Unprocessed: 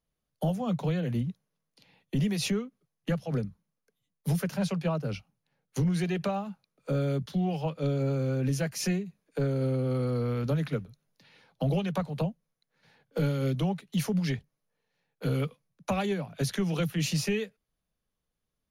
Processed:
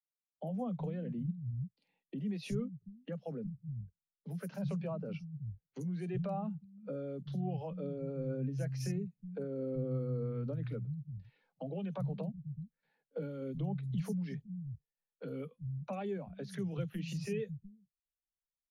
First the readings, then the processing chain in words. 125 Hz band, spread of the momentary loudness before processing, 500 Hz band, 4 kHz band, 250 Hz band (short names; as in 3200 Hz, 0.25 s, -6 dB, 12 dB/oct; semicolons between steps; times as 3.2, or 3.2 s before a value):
-8.5 dB, 9 LU, -8.0 dB, -17.0 dB, -8.5 dB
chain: limiter -30.5 dBFS, peak gain reduction 11 dB; three bands offset in time mids, highs, lows 50/360 ms, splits 160/5200 Hz; spectral expander 1.5:1; gain +1.5 dB